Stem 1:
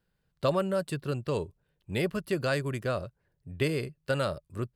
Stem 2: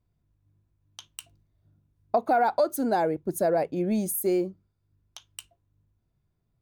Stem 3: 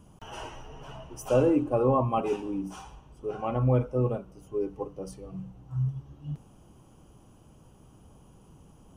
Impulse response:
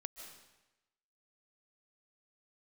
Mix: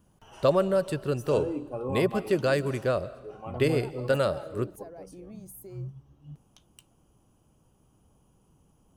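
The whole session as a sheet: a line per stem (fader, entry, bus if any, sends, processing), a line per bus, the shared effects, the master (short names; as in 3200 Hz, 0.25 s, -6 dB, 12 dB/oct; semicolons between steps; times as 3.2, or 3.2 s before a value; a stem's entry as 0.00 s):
-2.0 dB, 0.00 s, send -6 dB, bell 480 Hz +5.5 dB 1.7 oct
-13.5 dB, 1.40 s, no send, compressor, threshold -30 dBFS, peak gain reduction 11 dB
-9.5 dB, 0.00 s, no send, high shelf 9500 Hz +7.5 dB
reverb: on, RT60 1.0 s, pre-delay 0.11 s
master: dry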